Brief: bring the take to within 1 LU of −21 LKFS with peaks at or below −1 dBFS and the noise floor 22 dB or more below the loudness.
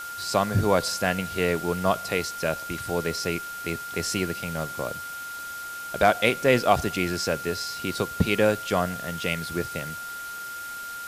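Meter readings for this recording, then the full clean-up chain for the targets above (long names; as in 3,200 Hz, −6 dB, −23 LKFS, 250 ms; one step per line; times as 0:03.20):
interfering tone 1,400 Hz; level of the tone −34 dBFS; background noise floor −36 dBFS; target noise floor −49 dBFS; integrated loudness −26.5 LKFS; sample peak −5.0 dBFS; target loudness −21.0 LKFS
→ notch filter 1,400 Hz, Q 30
noise reduction from a noise print 13 dB
level +5.5 dB
brickwall limiter −1 dBFS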